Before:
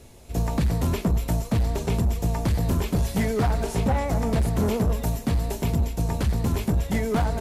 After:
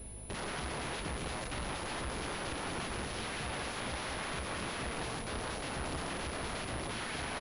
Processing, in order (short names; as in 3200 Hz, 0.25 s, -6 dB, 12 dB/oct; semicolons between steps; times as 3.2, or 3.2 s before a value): compressor 4:1, threshold -24 dBFS, peak gain reduction 4.5 dB; hum 50 Hz, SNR 21 dB; wrapped overs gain 31 dB; doubler 42 ms -12 dB; echo with dull and thin repeats by turns 0.168 s, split 2100 Hz, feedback 62%, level -6 dB; pulse-width modulation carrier 10000 Hz; gain -3 dB